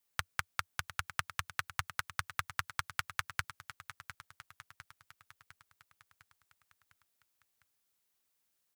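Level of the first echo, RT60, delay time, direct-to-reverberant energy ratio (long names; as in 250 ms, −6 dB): −13.0 dB, no reverb audible, 704 ms, no reverb audible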